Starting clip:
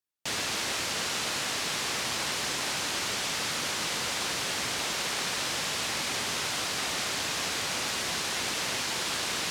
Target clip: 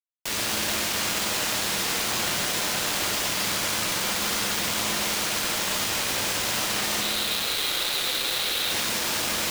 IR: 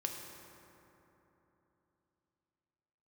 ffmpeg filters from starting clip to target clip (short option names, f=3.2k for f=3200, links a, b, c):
-filter_complex "[0:a]asettb=1/sr,asplit=3[a][b][c];[a]atrim=end=7.014[d];[b]atrim=start=7.01:end=8.71,asetpts=PTS-STARTPTS,afade=t=in:d=0.004:c=qsin,afade=t=out:st=1.696:d=0.004:c=qsin,highpass=f=360:w=0.5412,highpass=f=360:w=1.3066,equalizer=f=660:t=q:w=4:g=-7,equalizer=f=990:t=q:w=4:g=-9,equalizer=f=1.8k:t=q:w=4:g=-4,equalizer=f=3.9k:t=q:w=4:g=10,lowpass=f=4.2k:w=0.5412,lowpass=f=4.2k:w=1.3066[e];[c]atrim=start=8.706[f];[d][e]acrossfade=d=0.004:c1=hsin:c2=qsin[g];[g][f]acrossfade=d=0.004:c1=qsin:c2=hsin,asplit=2[h][i];[i]alimiter=level_in=1.5dB:limit=-24dB:level=0:latency=1,volume=-1.5dB,volume=-2dB[j];[h][j]amix=inputs=2:normalize=0[k];[1:a]atrim=start_sample=2205,afade=t=out:st=0.37:d=0.01,atrim=end_sample=16758,asetrate=26019,aresample=44100[l];[k][l]afir=irnorm=-1:irlink=0,acrusher=bits=3:mix=0:aa=0.000001,volume=-3.5dB"